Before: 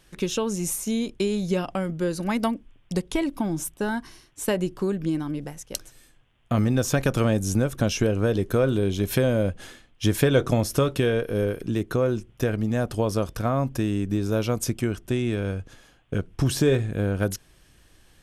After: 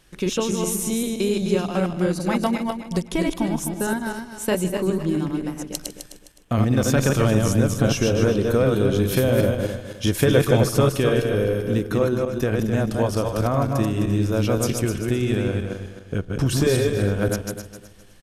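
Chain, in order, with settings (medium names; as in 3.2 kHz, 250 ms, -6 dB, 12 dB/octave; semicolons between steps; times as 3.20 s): backward echo that repeats 129 ms, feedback 52%, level -2.5 dB; delay 153 ms -18 dB; trim +1 dB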